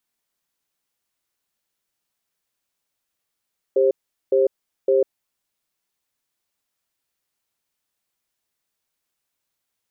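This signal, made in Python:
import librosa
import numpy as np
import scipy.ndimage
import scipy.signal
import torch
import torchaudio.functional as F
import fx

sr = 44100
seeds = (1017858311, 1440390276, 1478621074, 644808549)

y = fx.cadence(sr, length_s=1.61, low_hz=396.0, high_hz=532.0, on_s=0.15, off_s=0.41, level_db=-16.5)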